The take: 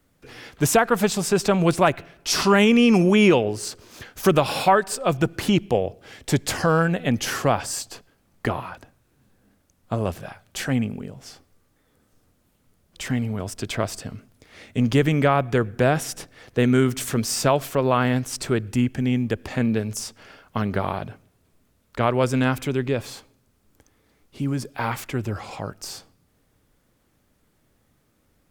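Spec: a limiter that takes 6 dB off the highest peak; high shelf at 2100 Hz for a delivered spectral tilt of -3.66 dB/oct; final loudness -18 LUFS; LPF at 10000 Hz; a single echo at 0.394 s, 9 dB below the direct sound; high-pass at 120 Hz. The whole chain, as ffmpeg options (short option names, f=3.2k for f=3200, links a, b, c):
-af "highpass=120,lowpass=10k,highshelf=f=2.1k:g=8,alimiter=limit=-7.5dB:level=0:latency=1,aecho=1:1:394:0.355,volume=4dB"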